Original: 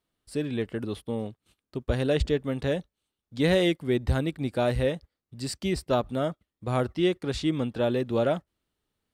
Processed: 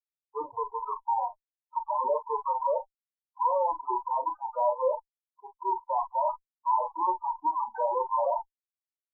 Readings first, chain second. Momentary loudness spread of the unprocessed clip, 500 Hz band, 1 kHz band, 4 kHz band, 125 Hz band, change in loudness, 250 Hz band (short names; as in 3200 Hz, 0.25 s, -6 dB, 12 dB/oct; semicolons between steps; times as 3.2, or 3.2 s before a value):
10 LU, -4.5 dB, +11.5 dB, under -40 dB, under -40 dB, -2.0 dB, under -20 dB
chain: inverse Chebyshev low-pass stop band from 4500 Hz, stop band 60 dB; in parallel at 0 dB: limiter -22 dBFS, peak gain reduction 9 dB; on the sum: sample leveller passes 1; resonant high-pass 960 Hz, resonance Q 8.7; fuzz box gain 33 dB, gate -34 dBFS; loudest bins only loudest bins 4; on a send: early reflections 33 ms -9.5 dB, 43 ms -12 dB; on the sum: gain -7.5 dB